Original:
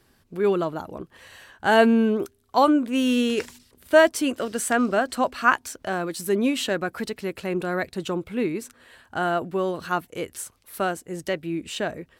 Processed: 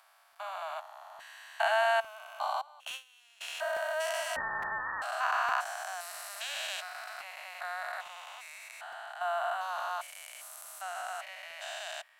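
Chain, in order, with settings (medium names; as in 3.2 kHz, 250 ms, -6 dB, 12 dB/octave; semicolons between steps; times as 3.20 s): spectrogram pixelated in time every 400 ms; 2.61–3.41 s: gate with hold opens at -16 dBFS; steep high-pass 640 Hz 96 dB/octave; 4.36–5.02 s: frequency inversion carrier 2.5 kHz; crackling interface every 0.86 s, samples 256, repeat, from 0.32 s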